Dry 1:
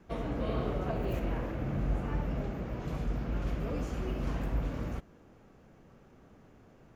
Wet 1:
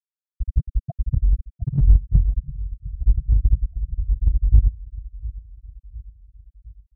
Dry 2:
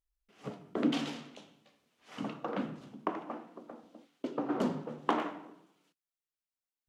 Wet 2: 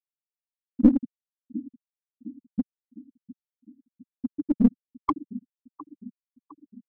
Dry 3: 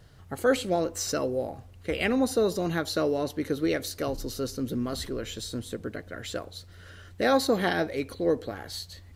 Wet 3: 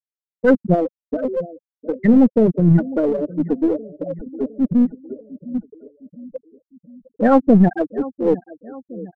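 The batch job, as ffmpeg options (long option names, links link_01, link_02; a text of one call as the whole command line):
ffmpeg -i in.wav -filter_complex "[0:a]afftfilt=real='re*gte(hypot(re,im),0.251)':imag='im*gte(hypot(re,im),0.251)':win_size=1024:overlap=0.75,lowshelf=frequency=260:width_type=q:width=1.5:gain=10,asplit=2[link_01][link_02];[link_02]adelay=708,lowpass=frequency=2100:poles=1,volume=-18.5dB,asplit=2[link_03][link_04];[link_04]adelay=708,lowpass=frequency=2100:poles=1,volume=0.51,asplit=2[link_05][link_06];[link_06]adelay=708,lowpass=frequency=2100:poles=1,volume=0.51,asplit=2[link_07][link_08];[link_08]adelay=708,lowpass=frequency=2100:poles=1,volume=0.51[link_09];[link_01][link_03][link_05][link_07][link_09]amix=inputs=5:normalize=0,asplit=2[link_10][link_11];[link_11]aeval=exprs='clip(val(0),-1,0.0237)':channel_layout=same,volume=-3dB[link_12];[link_10][link_12]amix=inputs=2:normalize=0,volume=6.5dB" out.wav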